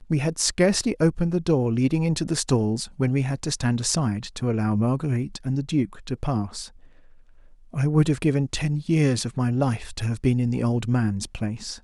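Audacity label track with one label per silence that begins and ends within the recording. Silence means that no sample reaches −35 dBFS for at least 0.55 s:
6.670000	7.740000	silence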